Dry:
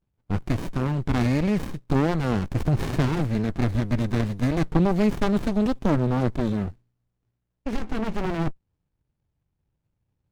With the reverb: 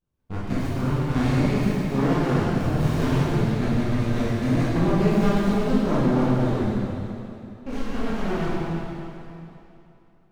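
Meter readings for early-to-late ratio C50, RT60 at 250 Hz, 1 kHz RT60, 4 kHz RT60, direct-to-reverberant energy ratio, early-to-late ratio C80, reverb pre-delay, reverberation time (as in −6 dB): −4.0 dB, 2.9 s, 2.9 s, 2.7 s, −9.5 dB, −2.0 dB, 7 ms, 2.9 s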